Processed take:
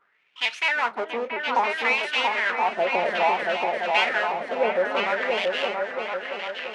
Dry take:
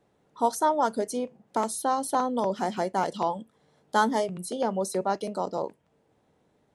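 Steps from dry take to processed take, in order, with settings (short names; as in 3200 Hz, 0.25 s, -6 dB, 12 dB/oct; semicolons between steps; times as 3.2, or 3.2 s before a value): half-waves squared off; LPF 8200 Hz 12 dB/oct; bell 2100 Hz +7 dB 1.9 oct; in parallel at -1 dB: limiter -13.5 dBFS, peak gain reduction 10.5 dB; on the sum: wah 0.59 Hz 540–2900 Hz, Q 3.7; repeats that get brighter 0.34 s, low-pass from 400 Hz, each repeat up 2 oct, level 0 dB; on a send at -12 dB: reverb RT60 0.15 s, pre-delay 4 ms; on the sum: shaped vibrato saw up 4.4 Hz, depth 100 cents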